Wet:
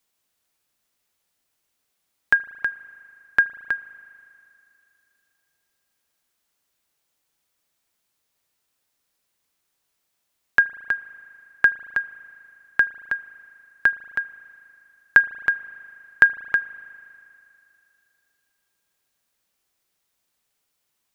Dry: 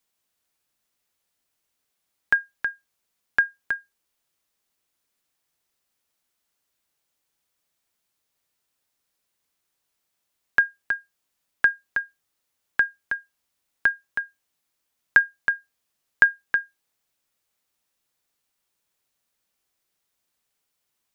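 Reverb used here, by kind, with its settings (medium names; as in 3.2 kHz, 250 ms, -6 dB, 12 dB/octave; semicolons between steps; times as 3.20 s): spring tank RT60 2.8 s, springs 37 ms, chirp 50 ms, DRR 16.5 dB; trim +2.5 dB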